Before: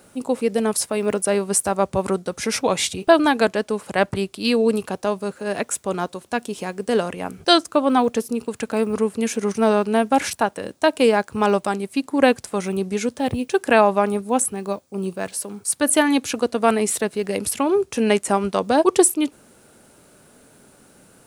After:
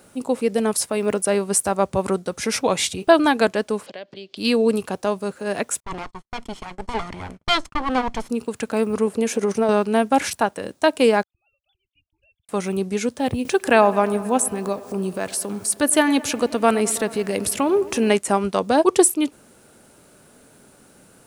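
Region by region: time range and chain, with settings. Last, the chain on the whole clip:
3.86–4.37 compressor 4:1, threshold -35 dBFS + speaker cabinet 240–5300 Hz, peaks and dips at 560 Hz +5 dB, 880 Hz -8 dB, 1300 Hz -9 dB, 3200 Hz +8 dB, 4500 Hz +7 dB
5.8–8.3 minimum comb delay 0.92 ms + gate -40 dBFS, range -39 dB + air absorption 67 m
9.07–9.69 bell 550 Hz +7 dB 1.6 oct + compressor 5:1, threshold -15 dBFS
11.23–12.49 sine-wave speech + inverse Chebyshev band-stop 260–1900 Hz, stop band 60 dB + bell 890 Hz +8.5 dB 1.9 oct
13.45–18.16 upward compressor, threshold -19 dBFS + requantised 10-bit, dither triangular + dark delay 0.106 s, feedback 78%, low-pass 2200 Hz, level -18.5 dB
whole clip: dry

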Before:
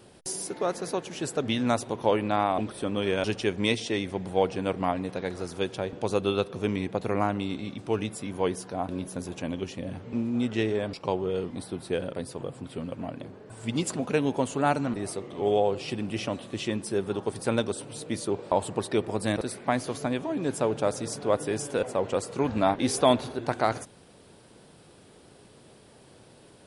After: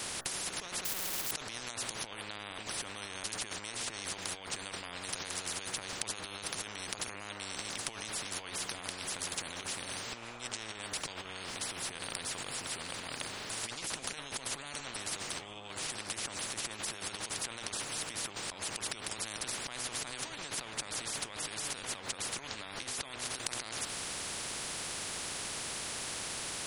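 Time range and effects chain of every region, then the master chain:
0.85–1.31 flutter echo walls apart 10.7 m, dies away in 1.2 s + companded quantiser 2-bit
whole clip: de-hum 61.69 Hz, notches 30; negative-ratio compressor -38 dBFS, ratio -1; spectral compressor 10:1; gain +6 dB

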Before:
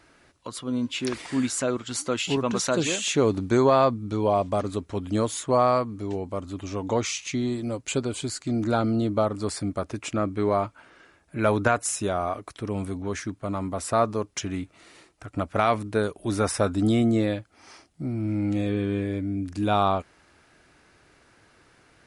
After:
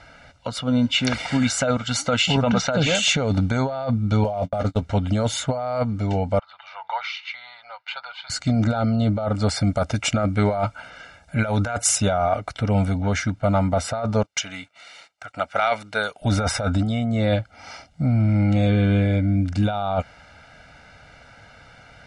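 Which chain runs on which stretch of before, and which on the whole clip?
2.5–2.95 median filter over 3 samples + air absorption 100 m
4.24–4.82 block floating point 7-bit + gate -31 dBFS, range -42 dB + doubler 18 ms -14 dB
6.39–8.3 elliptic band-pass 920–4400 Hz, stop band 50 dB + high shelf 2400 Hz -11.5 dB
9.64–11.98 high shelf 6100 Hz +11.5 dB + short-mantissa float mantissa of 8-bit
14.23–16.22 HPF 1400 Hz 6 dB/oct + gate -60 dBFS, range -13 dB
whole clip: LPF 5200 Hz 12 dB/oct; comb 1.4 ms, depth 93%; negative-ratio compressor -25 dBFS, ratio -1; gain +5 dB

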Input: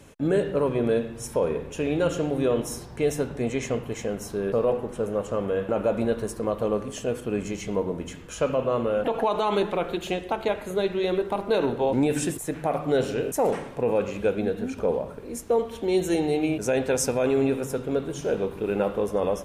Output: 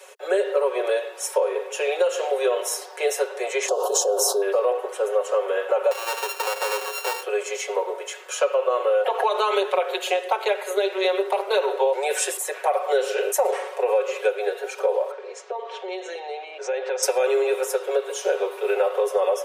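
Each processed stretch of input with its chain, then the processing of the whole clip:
3.68–4.42 Chebyshev band-stop 960–4600 Hz + fast leveller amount 100%
5.91–7.23 sample sorter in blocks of 32 samples + compressor 10:1, threshold -26 dBFS
15.11–17.03 Bessel low-pass 4100 Hz, order 6 + compressor 4:1, threshold -31 dBFS
whole clip: steep high-pass 410 Hz 96 dB/oct; comb 5.4 ms, depth 82%; compressor, threshold -23 dBFS; gain +6 dB

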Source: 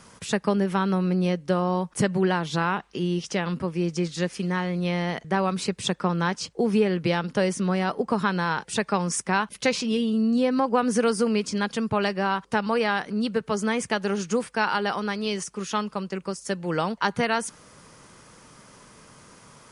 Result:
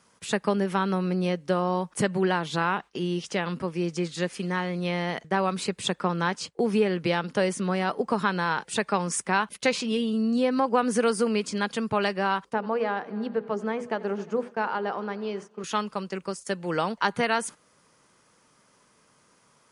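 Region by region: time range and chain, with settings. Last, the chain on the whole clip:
12.53–15.64 band-pass 430 Hz, Q 0.57 + notches 60/120/180/240/300/360/420/480/540 Hz + multi-head echo 89 ms, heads first and third, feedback 56%, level -21.5 dB
whole clip: dynamic EQ 5600 Hz, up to -5 dB, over -50 dBFS, Q 3.4; gate -38 dBFS, range -11 dB; low shelf 130 Hz -10.5 dB

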